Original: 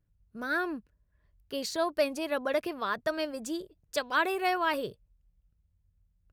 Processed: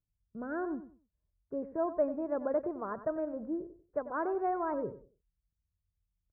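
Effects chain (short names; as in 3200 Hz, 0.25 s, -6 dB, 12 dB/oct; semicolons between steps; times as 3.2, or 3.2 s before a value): gate -58 dBFS, range -14 dB; Gaussian blur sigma 8.2 samples; feedback echo 94 ms, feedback 24%, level -13 dB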